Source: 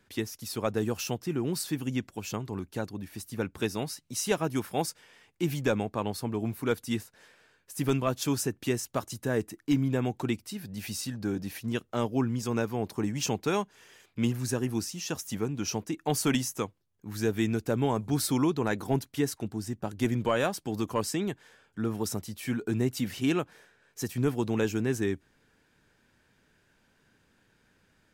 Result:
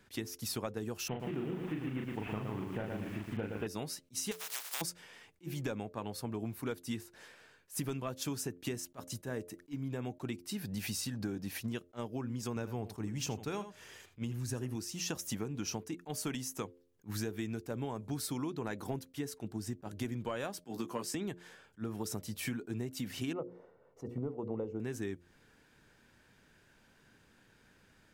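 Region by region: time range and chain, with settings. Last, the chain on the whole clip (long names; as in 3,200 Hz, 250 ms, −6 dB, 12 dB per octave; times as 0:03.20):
0:01.08–0:03.67: variable-slope delta modulation 16 kbit/s + double-tracking delay 38 ms −4 dB + feedback echo at a low word length 115 ms, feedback 35%, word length 9 bits, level −5 dB
0:04.31–0:04.80: compressing power law on the bin magnitudes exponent 0.15 + high-pass filter 700 Hz + downward compressor, threshold −35 dBFS
0:12.56–0:14.76: parametric band 77 Hz +9 dB 1.3 octaves + single-tap delay 82 ms −15 dB
0:20.64–0:21.15: high-pass filter 140 Hz 24 dB per octave + double-tracking delay 17 ms −6 dB
0:23.33–0:24.80: Savitzky-Golay smoothing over 65 samples + parametric band 500 Hz +9.5 dB 0.43 octaves + mains-hum notches 60/120/180/240/300/360/420/480 Hz
whole clip: downward compressor 10 to 1, threshold −36 dBFS; hum removal 87.46 Hz, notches 7; level that may rise only so fast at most 420 dB per second; level +2 dB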